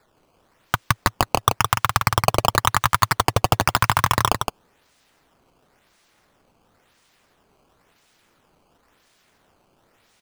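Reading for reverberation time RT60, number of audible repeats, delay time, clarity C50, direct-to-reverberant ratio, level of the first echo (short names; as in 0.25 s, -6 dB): none, 1, 0.166 s, none, none, -5.5 dB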